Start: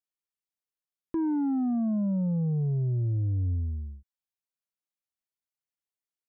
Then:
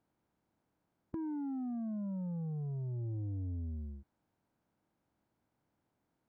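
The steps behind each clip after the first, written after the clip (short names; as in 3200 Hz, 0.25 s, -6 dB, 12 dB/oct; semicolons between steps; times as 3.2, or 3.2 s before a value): per-bin compression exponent 0.6; compressor, threshold -28 dBFS, peak gain reduction 3.5 dB; gain -9 dB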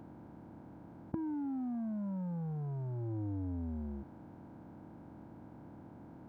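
per-bin compression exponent 0.4; low shelf 93 Hz -5.5 dB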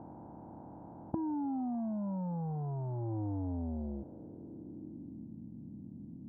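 low-pass sweep 850 Hz -> 220 Hz, 3.38–5.36; gain +1 dB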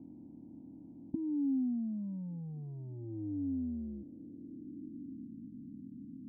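vocal tract filter i; gain +4.5 dB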